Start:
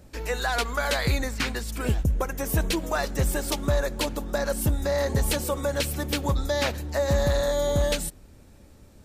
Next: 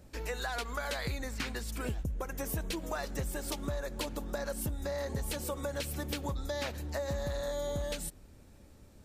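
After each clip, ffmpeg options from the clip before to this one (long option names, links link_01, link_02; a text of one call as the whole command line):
ffmpeg -i in.wav -af "acompressor=threshold=-28dB:ratio=4,volume=-5dB" out.wav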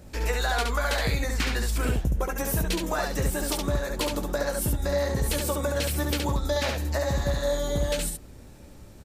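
ffmpeg -i in.wav -af "aecho=1:1:17|70:0.376|0.668,volume=7.5dB" out.wav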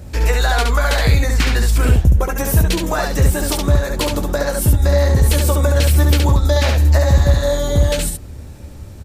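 ffmpeg -i in.wav -af "equalizer=frequency=82:width_type=o:width=0.98:gain=11,volume=8dB" out.wav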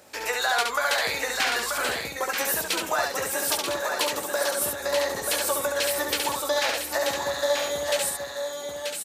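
ffmpeg -i in.wav -af "highpass=610,aecho=1:1:934:0.531,volume=-3.5dB" out.wav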